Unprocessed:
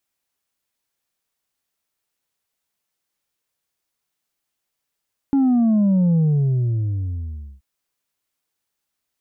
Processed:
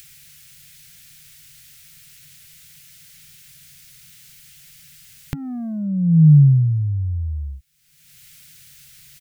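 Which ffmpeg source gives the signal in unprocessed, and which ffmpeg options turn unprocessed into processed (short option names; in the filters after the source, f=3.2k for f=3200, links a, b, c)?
-f lavfi -i "aevalsrc='0.2*clip((2.28-t)/1.45,0,1)*tanh(1.41*sin(2*PI*280*2.28/log(65/280)*(exp(log(65/280)*t/2.28)-1)))/tanh(1.41)':d=2.28:s=44100"
-af "firequalizer=gain_entry='entry(110,0);entry(150,11);entry(220,-23);entry(550,-19);entry(980,-28);entry(1400,-11);entry(2100,-4)':delay=0.05:min_phase=1,acompressor=mode=upward:threshold=-18dB:ratio=2.5"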